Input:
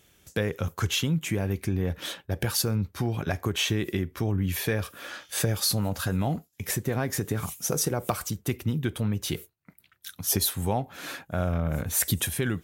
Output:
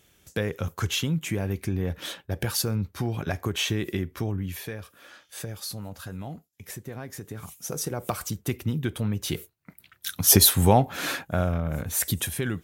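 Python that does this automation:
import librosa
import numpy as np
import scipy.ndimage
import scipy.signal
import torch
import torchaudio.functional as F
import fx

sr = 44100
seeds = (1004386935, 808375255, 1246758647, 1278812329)

y = fx.gain(x, sr, db=fx.line((4.19, -0.5), (4.78, -10.0), (7.26, -10.0), (8.26, 0.0), (9.22, 0.0), (10.13, 9.0), (11.03, 9.0), (11.63, -1.0)))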